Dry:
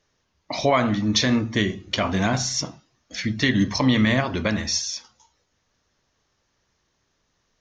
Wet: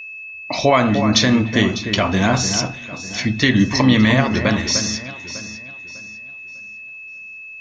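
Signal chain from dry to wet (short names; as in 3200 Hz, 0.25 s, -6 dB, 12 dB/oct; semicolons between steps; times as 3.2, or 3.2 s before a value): whine 2600 Hz -36 dBFS; echo with dull and thin repeats by turns 0.3 s, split 2000 Hz, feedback 55%, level -8 dB; gain +5 dB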